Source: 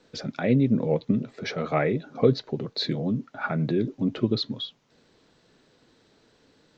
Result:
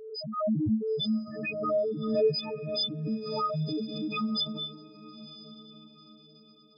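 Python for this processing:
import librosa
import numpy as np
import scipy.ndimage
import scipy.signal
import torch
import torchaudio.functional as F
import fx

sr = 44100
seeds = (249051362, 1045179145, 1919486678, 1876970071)

y = fx.freq_snap(x, sr, grid_st=6)
y = fx.env_lowpass(y, sr, base_hz=640.0, full_db=-18.5)
y = fx.spec_topn(y, sr, count=1)
y = fx.echo_diffused(y, sr, ms=968, feedback_pct=41, wet_db=-15)
y = fx.pre_swell(y, sr, db_per_s=52.0)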